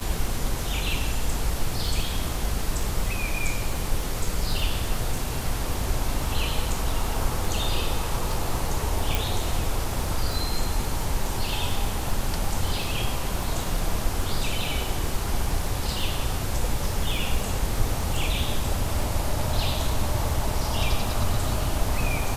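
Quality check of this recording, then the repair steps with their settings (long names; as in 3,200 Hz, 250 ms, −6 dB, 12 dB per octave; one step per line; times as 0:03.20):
surface crackle 21 per second −28 dBFS
0:09.15: click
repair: click removal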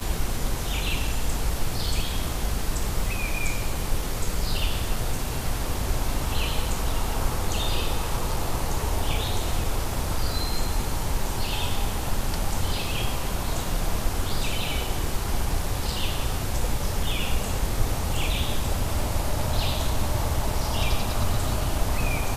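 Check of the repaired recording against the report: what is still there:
none of them is left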